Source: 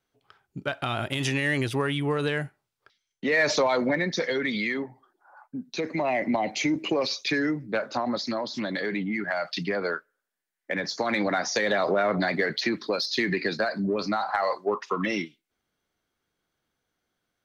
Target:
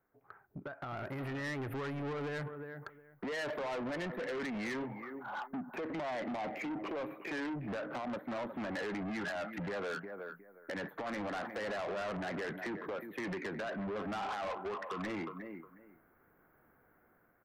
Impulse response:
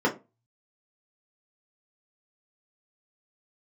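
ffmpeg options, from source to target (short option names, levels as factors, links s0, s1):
-filter_complex "[0:a]acompressor=threshold=0.0141:ratio=16,asuperstop=centerf=5400:order=8:qfactor=0.5,asplit=2[s0][s1];[s1]adelay=361,lowpass=f=4500:p=1,volume=0.158,asplit=2[s2][s3];[s3]adelay=361,lowpass=f=4500:p=1,volume=0.17[s4];[s2][s4]amix=inputs=2:normalize=0[s5];[s0][s5]amix=inputs=2:normalize=0,alimiter=level_in=3.55:limit=0.0631:level=0:latency=1:release=276,volume=0.282,dynaudnorm=f=110:g=17:m=3.98,asoftclip=type=tanh:threshold=0.0133,lowshelf=f=150:g=-5,volume=1.33"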